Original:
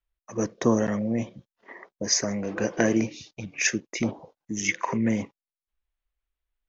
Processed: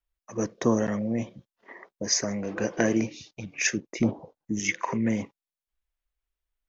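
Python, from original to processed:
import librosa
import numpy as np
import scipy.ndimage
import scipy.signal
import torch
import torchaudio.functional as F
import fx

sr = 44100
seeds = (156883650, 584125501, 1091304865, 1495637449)

y = fx.tilt_shelf(x, sr, db=5.0, hz=970.0, at=(3.77, 4.6))
y = y * 10.0 ** (-1.5 / 20.0)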